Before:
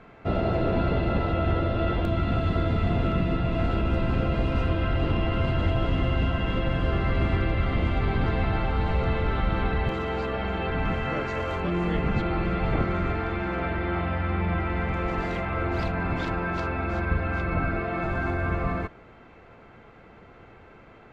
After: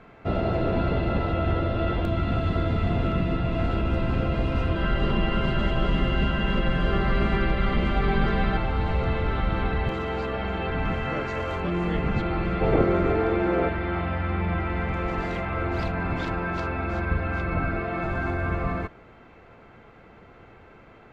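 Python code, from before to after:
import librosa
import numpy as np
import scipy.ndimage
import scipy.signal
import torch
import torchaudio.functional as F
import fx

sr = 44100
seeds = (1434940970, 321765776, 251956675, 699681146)

y = fx.comb(x, sr, ms=5.1, depth=0.88, at=(4.75, 8.57))
y = fx.peak_eq(y, sr, hz=440.0, db=11.0, octaves=1.3, at=(12.61, 13.69))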